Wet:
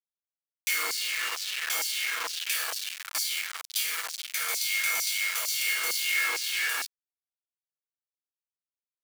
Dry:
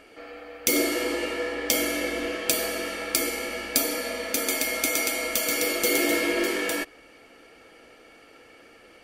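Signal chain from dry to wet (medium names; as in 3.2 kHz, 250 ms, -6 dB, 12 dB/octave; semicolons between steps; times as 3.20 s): chord resonator D#2 major, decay 0.44 s; companded quantiser 2-bit; LFO high-pass saw down 2.2 Hz 900–5500 Hz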